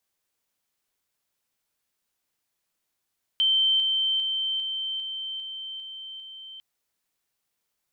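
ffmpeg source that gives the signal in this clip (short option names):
-f lavfi -i "aevalsrc='pow(10,(-18.5-3*floor(t/0.4))/20)*sin(2*PI*3110*t)':d=3.2:s=44100"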